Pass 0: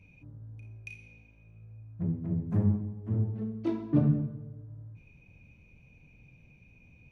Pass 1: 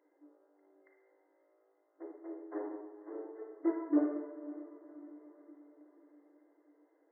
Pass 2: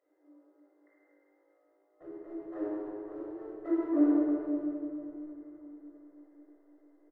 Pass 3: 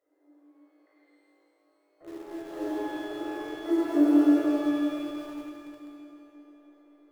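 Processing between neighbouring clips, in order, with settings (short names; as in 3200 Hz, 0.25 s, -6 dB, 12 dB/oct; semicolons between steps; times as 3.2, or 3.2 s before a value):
diffused feedback echo 0.531 s, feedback 53%, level -15 dB; Schroeder reverb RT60 0.84 s, DRR 6 dB; FFT band-pass 280–2100 Hz
in parallel at -9 dB: backlash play -41.5 dBFS; on the sum: outdoor echo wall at 53 m, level -10 dB; shoebox room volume 3100 m³, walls mixed, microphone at 6.3 m; gain -8 dB
in parallel at -10 dB: bit-crush 7-bit; on the sum: shimmer reverb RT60 1.6 s, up +12 st, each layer -8 dB, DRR 0.5 dB; gain -1 dB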